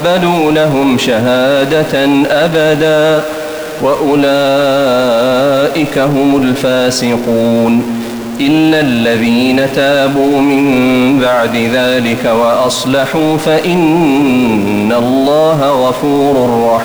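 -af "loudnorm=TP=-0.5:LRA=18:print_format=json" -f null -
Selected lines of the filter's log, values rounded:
"input_i" : "-10.2",
"input_tp" : "-1.8",
"input_lra" : "0.9",
"input_thresh" : "-20.2",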